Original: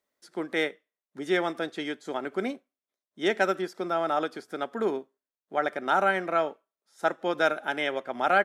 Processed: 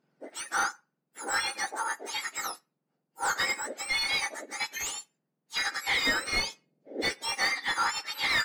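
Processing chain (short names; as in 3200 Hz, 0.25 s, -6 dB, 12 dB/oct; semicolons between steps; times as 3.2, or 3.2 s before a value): spectrum mirrored in octaves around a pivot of 1700 Hz; overdrive pedal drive 19 dB, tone 2200 Hz, clips at -13.5 dBFS; 6.07–7.24 resonant low shelf 760 Hz +8 dB, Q 1.5; gain -2 dB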